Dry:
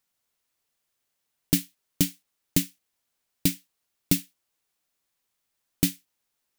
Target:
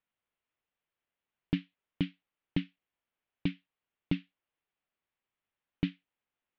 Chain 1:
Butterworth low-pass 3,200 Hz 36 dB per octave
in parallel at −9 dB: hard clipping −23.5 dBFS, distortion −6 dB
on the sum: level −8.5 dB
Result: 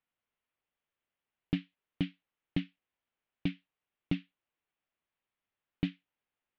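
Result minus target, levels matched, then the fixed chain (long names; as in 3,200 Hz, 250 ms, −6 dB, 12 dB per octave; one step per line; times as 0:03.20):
hard clipping: distortion +12 dB
Butterworth low-pass 3,200 Hz 36 dB per octave
in parallel at −9 dB: hard clipping −13.5 dBFS, distortion −18 dB
on the sum: level −8.5 dB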